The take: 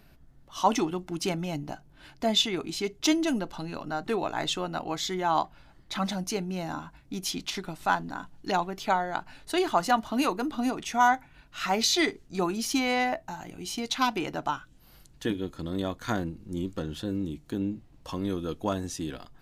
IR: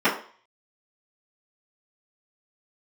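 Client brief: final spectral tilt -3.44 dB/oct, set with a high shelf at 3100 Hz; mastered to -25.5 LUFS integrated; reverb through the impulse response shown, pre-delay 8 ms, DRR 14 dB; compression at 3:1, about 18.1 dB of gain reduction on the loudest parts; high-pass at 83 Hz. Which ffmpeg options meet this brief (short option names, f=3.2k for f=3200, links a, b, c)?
-filter_complex "[0:a]highpass=83,highshelf=f=3.1k:g=4,acompressor=threshold=-43dB:ratio=3,asplit=2[a][b];[1:a]atrim=start_sample=2205,adelay=8[c];[b][c]afir=irnorm=-1:irlink=0,volume=-32.5dB[d];[a][d]amix=inputs=2:normalize=0,volume=17dB"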